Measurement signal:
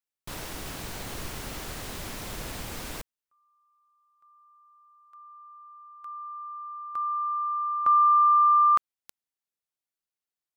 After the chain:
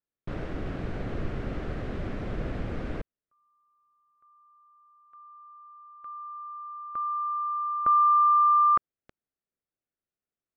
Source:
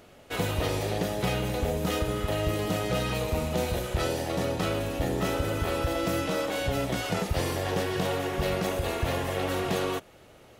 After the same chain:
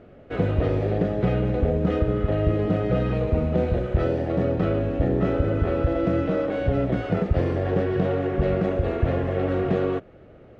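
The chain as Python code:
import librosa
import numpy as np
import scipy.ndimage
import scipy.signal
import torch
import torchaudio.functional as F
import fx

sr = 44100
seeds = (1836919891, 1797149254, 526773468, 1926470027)

y = scipy.signal.sosfilt(scipy.signal.butter(2, 1200.0, 'lowpass', fs=sr, output='sos'), x)
y = fx.peak_eq(y, sr, hz=930.0, db=-11.5, octaves=0.69)
y = F.gain(torch.from_numpy(y), 7.5).numpy()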